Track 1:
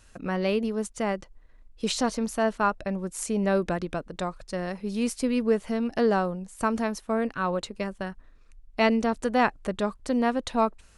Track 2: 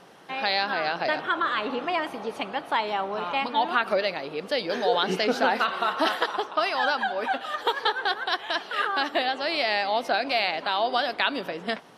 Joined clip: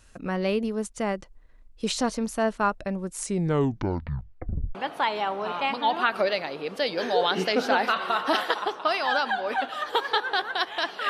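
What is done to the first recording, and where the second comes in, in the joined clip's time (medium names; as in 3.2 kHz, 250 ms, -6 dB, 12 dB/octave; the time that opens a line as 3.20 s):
track 1
3.18 s: tape stop 1.57 s
4.75 s: go over to track 2 from 2.47 s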